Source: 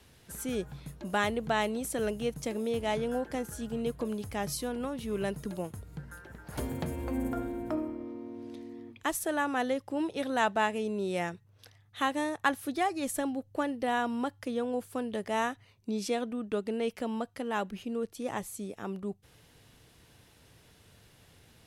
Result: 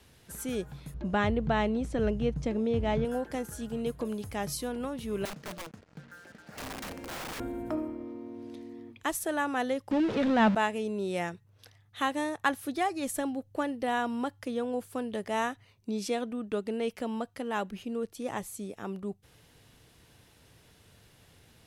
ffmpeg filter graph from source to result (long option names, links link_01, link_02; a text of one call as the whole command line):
ffmpeg -i in.wav -filter_complex "[0:a]asettb=1/sr,asplit=3[link_01][link_02][link_03];[link_01]atrim=end=0.944[link_04];[link_02]atrim=start=0.94:end=3.05,asetpts=PTS-STARTPTS,afade=type=in:duration=0.004:curve=qsin,afade=type=out:start_time=2.106:duration=0.004:curve=qsin,lowpass=7400,aemphasis=mode=reproduction:type=bsi[link_05];[link_03]atrim=start=3.046[link_06];[link_04][link_05]acrossfade=duration=0.004:curve1=hsin:curve2=qsin[link_07];[link_07][link_06]acrossfade=duration=0.004:curve1=qsin:curve2=hsin,asettb=1/sr,asplit=3[link_08][link_09][link_10];[link_08]atrim=end=5.254[link_11];[link_09]atrim=start=5.25:end=7.4,asetpts=PTS-STARTPTS,afade=type=in:duration=0.004:curve=qsin,afade=type=out:start_time=2.146:duration=0.004:curve=qsin,highpass=210,equalizer=frequency=210:width_type=q:width=4:gain=4,equalizer=frequency=370:width_type=q:width=4:gain=-7,equalizer=frequency=980:width_type=q:width=4:gain=-9,equalizer=frequency=3500:width_type=q:width=4:gain=-8,lowpass=frequency=5300:width=0.5412,lowpass=frequency=5300:width=1.3066,aeval=exprs='(mod(53.1*val(0)+1,2)-1)/53.1':channel_layout=same,acrusher=bits=8:mix=0:aa=0.5[link_12];[link_10]atrim=start=7.396[link_13];[link_11][link_12]acrossfade=duration=0.004:curve1=hsin:curve2=qsin[link_14];[link_14][link_13]acrossfade=duration=0.004:curve1=qsin:curve2=hsin,asettb=1/sr,asplit=3[link_15][link_16][link_17];[link_15]atrim=end=9.914[link_18];[link_16]atrim=start=9.91:end=10.55,asetpts=PTS-STARTPTS,afade=type=in:duration=0.004:curve=qsin,afade=type=out:start_time=0.636:duration=0.004:curve=qsin,aeval=exprs='val(0)+0.5*0.0316*sgn(val(0))':channel_layout=same,lowpass=3600,equalizer=frequency=220:width_type=o:width=0.33:gain=14.5[link_19];[link_17]atrim=start=10.546[link_20];[link_18][link_19]acrossfade=duration=0.004:curve1=hsin:curve2=qsin[link_21];[link_21][link_20]acrossfade=duration=0.004:curve1=qsin:curve2=hsin" out.wav